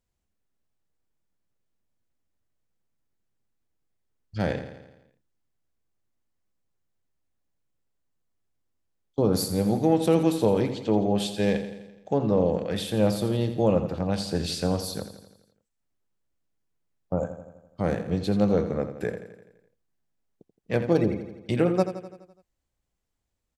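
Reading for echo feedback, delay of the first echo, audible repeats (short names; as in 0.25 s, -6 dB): 58%, 84 ms, 6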